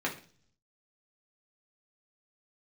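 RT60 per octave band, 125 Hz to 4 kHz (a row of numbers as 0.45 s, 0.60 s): 0.95 s, 0.65 s, 0.50 s, 0.40 s, 0.40 s, 0.55 s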